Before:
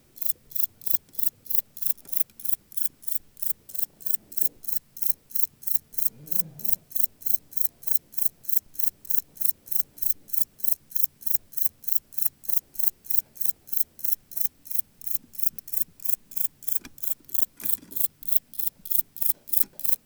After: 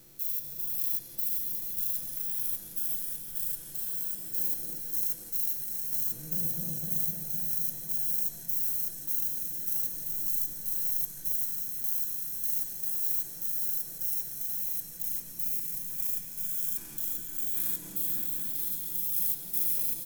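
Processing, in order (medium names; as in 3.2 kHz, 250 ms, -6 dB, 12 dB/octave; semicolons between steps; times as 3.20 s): spectrogram pixelated in time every 200 ms; comb 6 ms; delay with an opening low-pass 253 ms, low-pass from 750 Hz, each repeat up 2 oct, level 0 dB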